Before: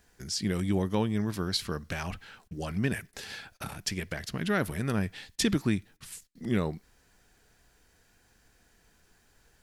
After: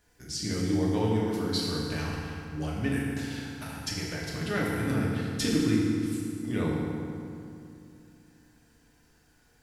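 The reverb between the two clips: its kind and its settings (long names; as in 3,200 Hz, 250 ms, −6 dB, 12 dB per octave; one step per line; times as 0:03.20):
feedback delay network reverb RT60 2.6 s, low-frequency decay 1.25×, high-frequency decay 0.65×, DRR −5 dB
level −5.5 dB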